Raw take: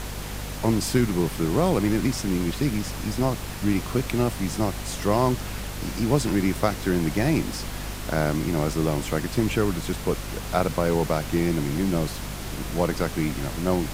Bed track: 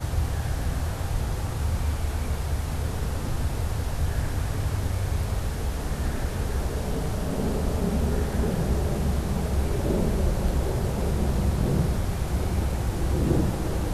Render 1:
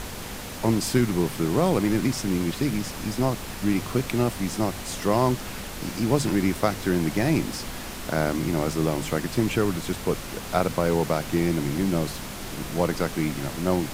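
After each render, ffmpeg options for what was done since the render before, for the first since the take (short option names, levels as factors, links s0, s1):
-af "bandreject=f=50:t=h:w=4,bandreject=f=100:t=h:w=4,bandreject=f=150:t=h:w=4"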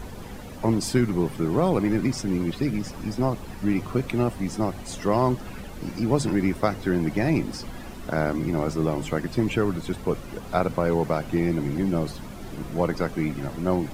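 -af "afftdn=nr=12:nf=-36"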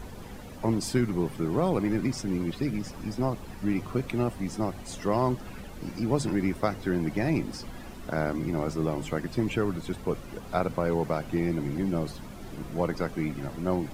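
-af "volume=0.631"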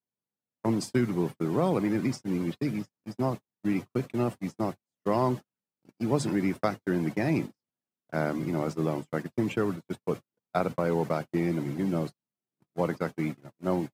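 -af "agate=range=0.002:threshold=0.0316:ratio=16:detection=peak,highpass=f=110:w=0.5412,highpass=f=110:w=1.3066"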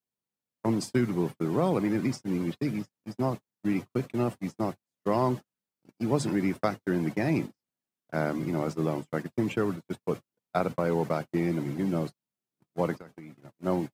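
-filter_complex "[0:a]asplit=3[s0][s1][s2];[s0]afade=t=out:st=12.97:d=0.02[s3];[s1]acompressor=threshold=0.00891:ratio=10:attack=3.2:release=140:knee=1:detection=peak,afade=t=in:st=12.97:d=0.02,afade=t=out:st=13.57:d=0.02[s4];[s2]afade=t=in:st=13.57:d=0.02[s5];[s3][s4][s5]amix=inputs=3:normalize=0"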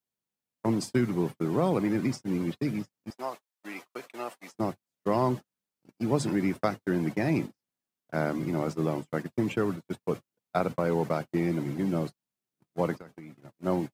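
-filter_complex "[0:a]asettb=1/sr,asplit=3[s0][s1][s2];[s0]atrim=end=3.104[s3];[s1]atrim=start=3.1:end=4.55,asetpts=PTS-STARTPTS,afade=t=in:d=0.004:c=qsin,afade=t=out:st=1.446:d=0.004:c=qsin,highpass=690[s4];[s2]atrim=start=4.546[s5];[s3][s4]acrossfade=d=0.004:c1=hsin:c2=qsin[s6];[s6][s5]acrossfade=d=0.004:c1=qsin:c2=hsin"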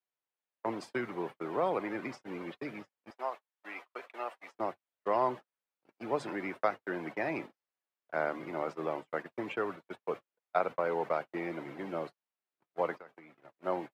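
-filter_complex "[0:a]acrossover=split=430 3200:gain=0.1 1 0.126[s0][s1][s2];[s0][s1][s2]amix=inputs=3:normalize=0"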